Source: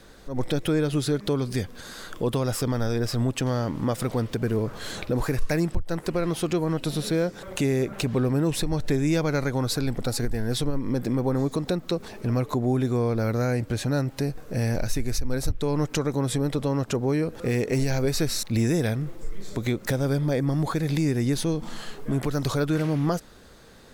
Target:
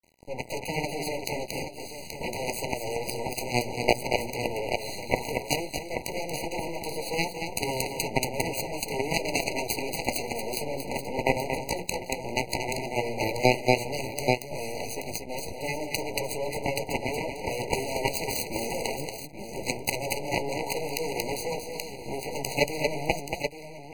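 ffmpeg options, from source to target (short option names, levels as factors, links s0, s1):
-filter_complex "[0:a]highpass=78,lowshelf=f=270:g=9.5,bandreject=f=60:t=h:w=6,bandreject=f=120:t=h:w=6,bandreject=f=180:t=h:w=6,bandreject=f=240:t=h:w=6,bandreject=f=300:t=h:w=6,bandreject=f=360:t=h:w=6,bandreject=f=420:t=h:w=6,aeval=exprs='max(val(0),0)':c=same,acrossover=split=470[s0][s1];[s0]acompressor=threshold=0.00631:ratio=10[s2];[s2][s1]amix=inputs=2:normalize=0,flanger=delay=9.1:depth=7.8:regen=22:speed=0.12:shape=sinusoidal,acontrast=28,aeval=exprs='0.316*(cos(1*acos(clip(val(0)/0.316,-1,1)))-cos(1*PI/2))+0.0631*(cos(7*acos(clip(val(0)/0.316,-1,1)))-cos(7*PI/2))':c=same,aeval=exprs='sgn(val(0))*max(abs(val(0))-0.00335,0)':c=same,asplit=2[s3][s4];[s4]aecho=0:1:231|829:0.447|0.335[s5];[s3][s5]amix=inputs=2:normalize=0,alimiter=level_in=8.41:limit=0.891:release=50:level=0:latency=1,afftfilt=real='re*eq(mod(floor(b*sr/1024/990),2),0)':imag='im*eq(mod(floor(b*sr/1024/990),2),0)':win_size=1024:overlap=0.75"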